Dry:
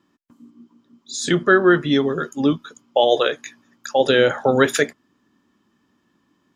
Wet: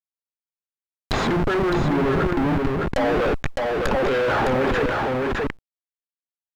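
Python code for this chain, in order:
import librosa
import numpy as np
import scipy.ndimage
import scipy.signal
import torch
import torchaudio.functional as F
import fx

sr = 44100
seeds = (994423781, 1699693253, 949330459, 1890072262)

y = fx.zero_step(x, sr, step_db=-23.0, at=(3.91, 4.6))
y = fx.hum_notches(y, sr, base_hz=60, count=6)
y = fx.schmitt(y, sr, flips_db=-28.0)
y = fx.high_shelf(y, sr, hz=3200.0, db=11.0, at=(1.16, 1.7))
y = fx.env_lowpass_down(y, sr, base_hz=1400.0, full_db=-18.5)
y = fx.quant_companded(y, sr, bits=8)
y = y + 10.0 ** (-5.5 / 20.0) * np.pad(y, (int(610 * sr / 1000.0), 0))[:len(y)]
y = fx.env_flatten(y, sr, amount_pct=50)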